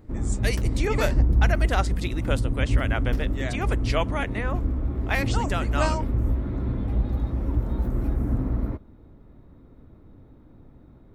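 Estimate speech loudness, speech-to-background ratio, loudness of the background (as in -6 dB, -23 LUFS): -30.0 LUFS, -3.0 dB, -27.0 LUFS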